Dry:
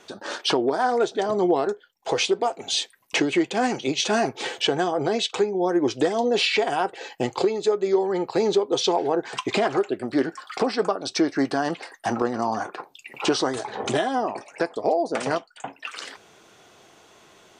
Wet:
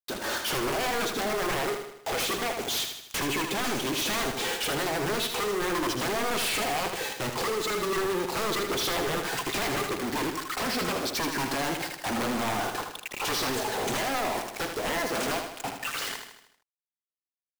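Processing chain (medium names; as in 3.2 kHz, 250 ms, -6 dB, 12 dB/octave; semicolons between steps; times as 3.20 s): integer overflow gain 17 dB; companded quantiser 2-bit; feedback delay 78 ms, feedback 51%, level -6.5 dB; trim -4 dB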